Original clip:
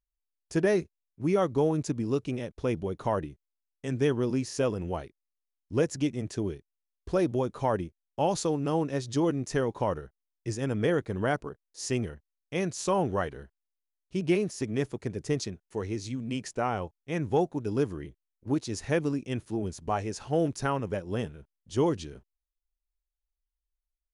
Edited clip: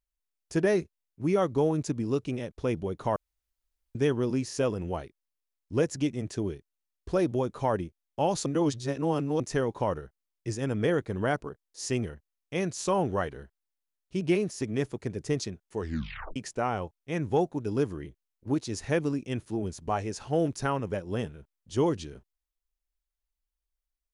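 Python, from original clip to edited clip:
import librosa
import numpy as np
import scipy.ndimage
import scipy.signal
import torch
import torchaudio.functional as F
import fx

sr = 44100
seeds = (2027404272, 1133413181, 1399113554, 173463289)

y = fx.edit(x, sr, fx.room_tone_fill(start_s=3.16, length_s=0.79),
    fx.reverse_span(start_s=8.46, length_s=0.94),
    fx.tape_stop(start_s=15.79, length_s=0.57), tone=tone)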